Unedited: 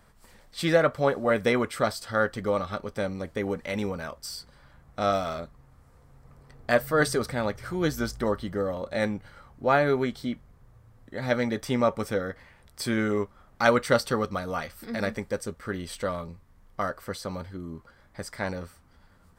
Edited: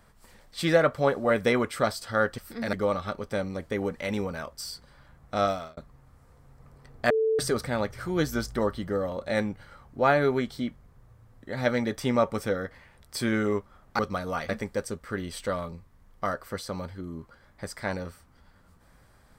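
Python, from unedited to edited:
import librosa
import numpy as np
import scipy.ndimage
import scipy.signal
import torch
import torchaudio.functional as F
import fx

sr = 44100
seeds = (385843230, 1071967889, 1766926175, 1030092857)

y = fx.edit(x, sr, fx.fade_out_span(start_s=5.09, length_s=0.33),
    fx.bleep(start_s=6.75, length_s=0.29, hz=442.0, db=-21.0),
    fx.cut(start_s=13.64, length_s=0.56),
    fx.move(start_s=14.7, length_s=0.35, to_s=2.38), tone=tone)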